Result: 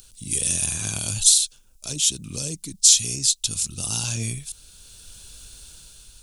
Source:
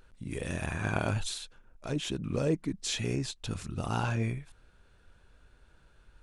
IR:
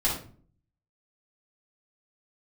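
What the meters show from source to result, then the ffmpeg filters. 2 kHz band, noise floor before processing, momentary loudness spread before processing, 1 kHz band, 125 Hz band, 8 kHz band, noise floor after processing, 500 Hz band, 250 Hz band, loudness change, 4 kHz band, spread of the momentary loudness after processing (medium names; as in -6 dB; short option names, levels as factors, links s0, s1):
+0.5 dB, -62 dBFS, 9 LU, -7.5 dB, +0.5 dB, +24.5 dB, -53 dBFS, -7.5 dB, -3.0 dB, +13.5 dB, +15.5 dB, 15 LU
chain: -filter_complex "[0:a]aexciter=amount=6.2:drive=5.5:freq=2700,acrossover=split=210|3000[s0][s1][s2];[s1]acompressor=threshold=0.0251:ratio=6[s3];[s0][s3][s2]amix=inputs=3:normalize=0,bass=f=250:g=5,treble=f=4000:g=12,dynaudnorm=f=310:g=7:m=3.55,volume=0.891"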